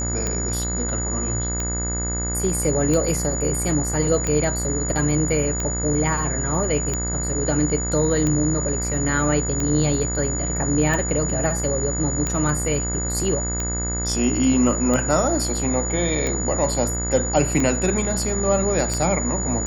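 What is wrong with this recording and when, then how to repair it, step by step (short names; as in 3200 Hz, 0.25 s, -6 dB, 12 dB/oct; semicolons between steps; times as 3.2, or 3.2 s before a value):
buzz 60 Hz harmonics 36 -27 dBFS
tick 45 rpm -11 dBFS
tone 6900 Hz -26 dBFS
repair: de-click; de-hum 60 Hz, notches 36; notch 6900 Hz, Q 30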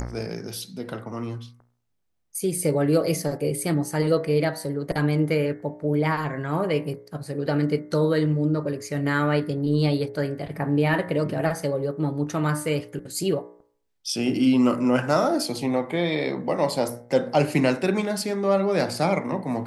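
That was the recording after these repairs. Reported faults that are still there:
none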